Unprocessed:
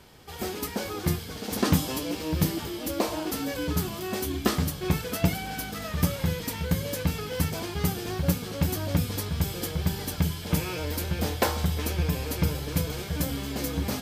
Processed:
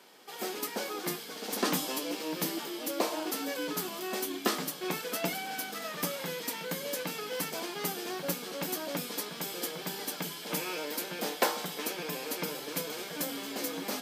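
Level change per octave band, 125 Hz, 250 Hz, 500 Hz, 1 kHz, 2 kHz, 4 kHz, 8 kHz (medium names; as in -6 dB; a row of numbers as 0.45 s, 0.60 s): -19.5 dB, -8.5 dB, -3.0 dB, -2.0 dB, -1.5 dB, -1.5 dB, -1.5 dB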